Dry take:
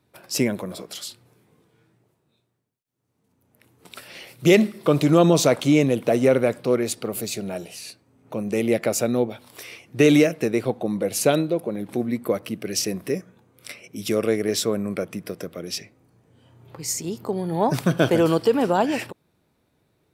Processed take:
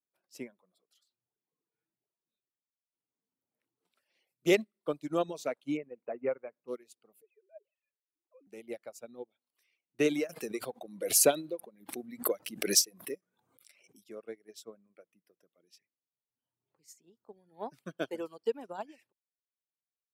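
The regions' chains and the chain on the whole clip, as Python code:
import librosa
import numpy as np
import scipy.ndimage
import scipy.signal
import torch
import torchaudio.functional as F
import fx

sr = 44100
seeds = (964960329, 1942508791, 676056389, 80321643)

y = fx.chain(x, sr, fx.law_mismatch(coded='mu'),
    fx.high_shelf(hz=3900.0, db=-5.5),
    fx.band_squash(depth_pct=40), at=(1.03, 4.06))
y = fx.chain(y, sr, fx.lowpass(hz=2400.0, slope=12),
    fx.resample_bad(factor=8, down='none', up='filtered'), at=(5.77, 6.68))
y = fx.chain(y, sr, fx.sine_speech(),
    fx.brickwall_highpass(low_hz=190.0),
    fx.high_shelf(hz=2100.0, db=-11.5), at=(7.22, 8.47))
y = fx.chain(y, sr, fx.high_shelf(hz=4700.0, db=11.0),
    fx.leveller(passes=1),
    fx.pre_swell(db_per_s=23.0), at=(10.29, 14.04))
y = fx.dereverb_blind(y, sr, rt60_s=1.7)
y = scipy.signal.sosfilt(scipy.signal.butter(2, 210.0, 'highpass', fs=sr, output='sos'), y)
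y = fx.upward_expand(y, sr, threshold_db=-30.0, expansion=2.5)
y = y * librosa.db_to_amplitude(-6.5)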